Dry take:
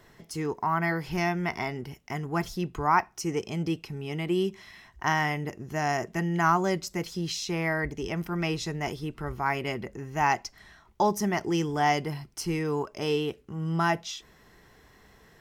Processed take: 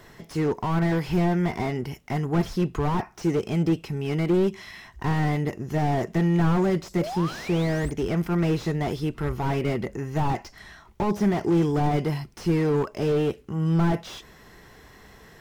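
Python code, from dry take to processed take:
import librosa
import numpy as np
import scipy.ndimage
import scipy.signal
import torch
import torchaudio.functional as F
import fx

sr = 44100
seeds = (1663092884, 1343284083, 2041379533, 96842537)

y = fx.spec_paint(x, sr, seeds[0], shape='rise', start_s=7.0, length_s=0.91, low_hz=520.0, high_hz=9100.0, level_db=-39.0)
y = fx.slew_limit(y, sr, full_power_hz=19.0)
y = y * librosa.db_to_amplitude(7.0)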